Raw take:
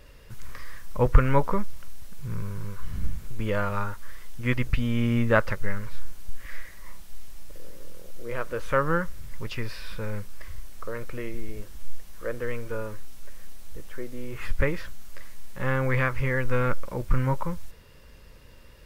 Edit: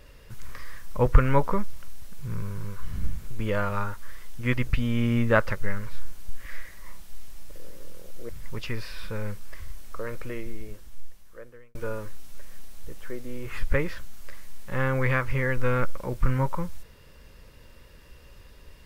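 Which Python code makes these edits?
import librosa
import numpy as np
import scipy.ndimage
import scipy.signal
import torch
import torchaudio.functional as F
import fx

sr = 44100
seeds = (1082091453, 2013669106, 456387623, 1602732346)

y = fx.edit(x, sr, fx.cut(start_s=8.29, length_s=0.88),
    fx.fade_out_span(start_s=11.12, length_s=1.51), tone=tone)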